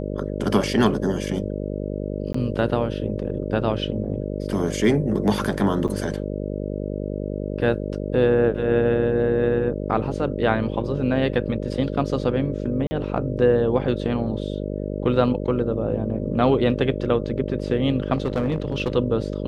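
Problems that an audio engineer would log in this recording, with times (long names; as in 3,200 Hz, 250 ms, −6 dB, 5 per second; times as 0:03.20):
mains buzz 50 Hz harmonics 12 −28 dBFS
0:02.33–0:02.34: drop-out 14 ms
0:05.88–0:05.89: drop-out 6.6 ms
0:12.87–0:12.91: drop-out 40 ms
0:18.13–0:18.96: clipping −17.5 dBFS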